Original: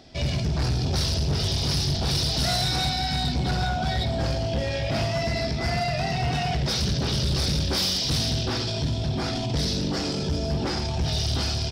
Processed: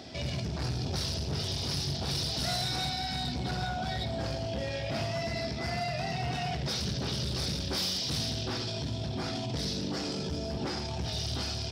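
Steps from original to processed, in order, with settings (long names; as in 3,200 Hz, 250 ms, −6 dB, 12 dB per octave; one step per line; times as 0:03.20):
brickwall limiter −32 dBFS, peak gain reduction 12 dB
high-pass filter 76 Hz
mains-hum notches 50/100/150 Hz
level +5 dB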